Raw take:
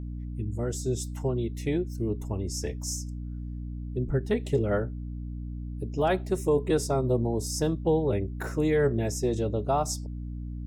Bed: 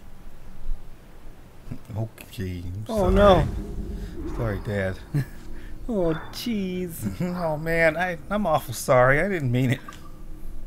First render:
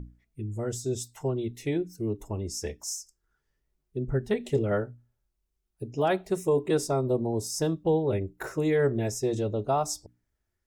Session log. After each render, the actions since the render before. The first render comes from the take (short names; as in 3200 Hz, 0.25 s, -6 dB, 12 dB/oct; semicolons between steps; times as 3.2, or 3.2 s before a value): notches 60/120/180/240/300 Hz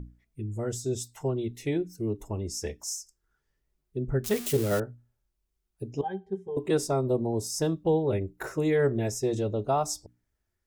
4.24–4.8 switching spikes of -23.5 dBFS; 6.01–6.57 octave resonator G, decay 0.1 s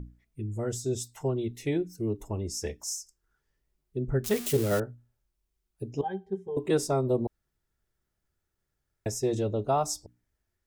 7.27–9.06 room tone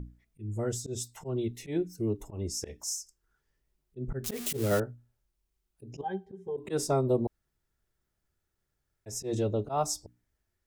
auto swell 0.117 s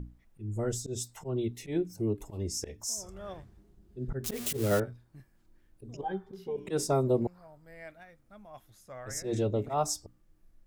add bed -27.5 dB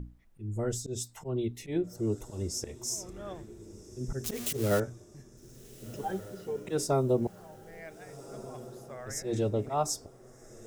diffused feedback echo 1.509 s, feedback 42%, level -16 dB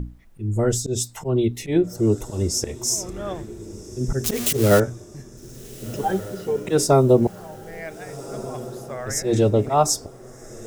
gain +11.5 dB